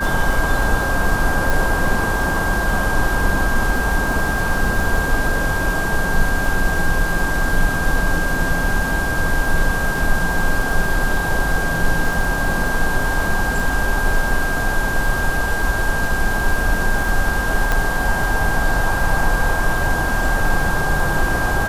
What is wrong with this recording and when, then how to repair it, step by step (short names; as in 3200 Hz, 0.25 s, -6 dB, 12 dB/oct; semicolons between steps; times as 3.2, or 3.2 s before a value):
crackle 38/s -24 dBFS
tone 1600 Hz -22 dBFS
1.5 pop
17.72 pop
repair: de-click; notch 1600 Hz, Q 30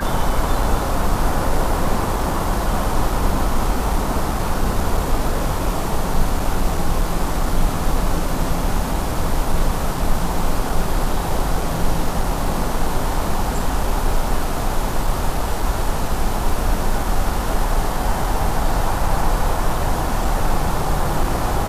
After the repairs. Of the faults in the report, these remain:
17.72 pop